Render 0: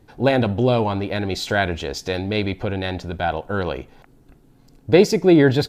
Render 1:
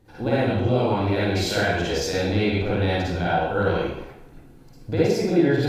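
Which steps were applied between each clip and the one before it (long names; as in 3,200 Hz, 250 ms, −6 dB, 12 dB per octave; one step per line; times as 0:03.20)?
downward compressor 4 to 1, threshold −23 dBFS, peak gain reduction 13 dB
convolution reverb RT60 0.80 s, pre-delay 45 ms, DRR −9 dB
level −5 dB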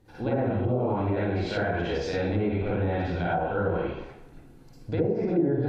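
treble cut that deepens with the level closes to 740 Hz, closed at −15.5 dBFS
in parallel at −1 dB: brickwall limiter −17 dBFS, peak gain reduction 9.5 dB
on the sum: level −8.5 dB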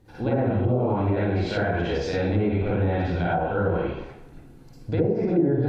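parametric band 93 Hz +2.5 dB 2.9 octaves
level +2 dB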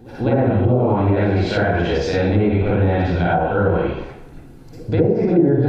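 echo ahead of the sound 200 ms −23 dB
level +6.5 dB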